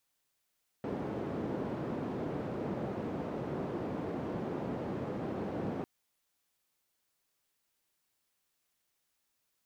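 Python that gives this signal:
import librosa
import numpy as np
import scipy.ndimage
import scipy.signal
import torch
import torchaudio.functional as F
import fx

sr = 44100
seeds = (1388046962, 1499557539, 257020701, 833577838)

y = fx.band_noise(sr, seeds[0], length_s=5.0, low_hz=130.0, high_hz=400.0, level_db=-37.0)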